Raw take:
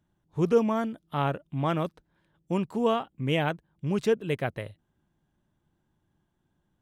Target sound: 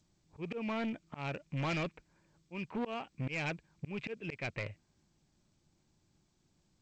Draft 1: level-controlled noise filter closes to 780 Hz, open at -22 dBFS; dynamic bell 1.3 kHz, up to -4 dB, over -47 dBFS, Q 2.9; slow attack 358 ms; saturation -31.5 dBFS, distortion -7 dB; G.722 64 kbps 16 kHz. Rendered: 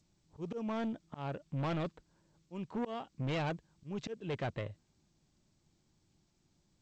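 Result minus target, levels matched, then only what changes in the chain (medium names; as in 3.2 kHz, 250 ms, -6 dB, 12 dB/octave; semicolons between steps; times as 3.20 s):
2 kHz band -6.0 dB
add after dynamic bell: resonant low-pass 2.4 kHz, resonance Q 7.9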